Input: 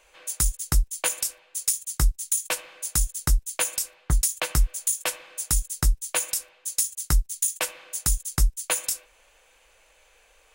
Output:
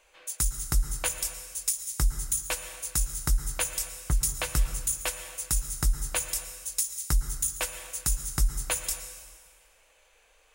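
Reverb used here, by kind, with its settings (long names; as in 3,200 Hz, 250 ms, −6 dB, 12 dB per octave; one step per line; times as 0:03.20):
dense smooth reverb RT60 1.6 s, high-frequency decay 0.95×, pre-delay 100 ms, DRR 9 dB
level −4 dB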